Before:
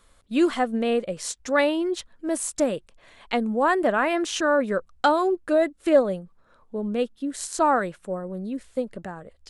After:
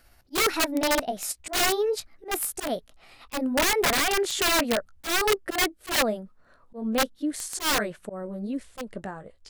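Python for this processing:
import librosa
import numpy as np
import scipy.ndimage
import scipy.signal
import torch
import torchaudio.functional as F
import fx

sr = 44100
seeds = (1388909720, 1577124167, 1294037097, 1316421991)

y = fx.pitch_glide(x, sr, semitones=4.5, runs='ending unshifted')
y = (np.mod(10.0 ** (18.0 / 20.0) * y + 1.0, 2.0) - 1.0) / 10.0 ** (18.0 / 20.0)
y = fx.auto_swell(y, sr, attack_ms=124.0)
y = y * librosa.db_to_amplitude(1.5)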